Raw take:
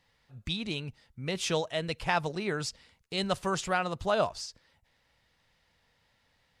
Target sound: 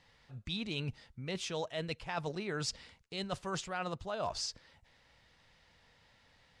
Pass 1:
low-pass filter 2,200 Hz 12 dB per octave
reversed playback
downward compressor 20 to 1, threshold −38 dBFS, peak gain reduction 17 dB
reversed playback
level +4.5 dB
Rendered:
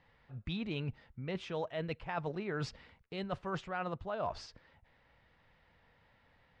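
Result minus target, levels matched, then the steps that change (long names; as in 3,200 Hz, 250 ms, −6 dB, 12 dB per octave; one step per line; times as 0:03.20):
8,000 Hz band −15.0 dB
change: low-pass filter 8,200 Hz 12 dB per octave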